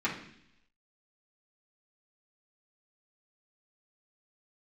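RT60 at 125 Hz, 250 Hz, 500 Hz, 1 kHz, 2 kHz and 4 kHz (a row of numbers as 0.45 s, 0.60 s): 0.85 s, 0.85 s, 0.75 s, 0.65 s, 0.85 s, 0.95 s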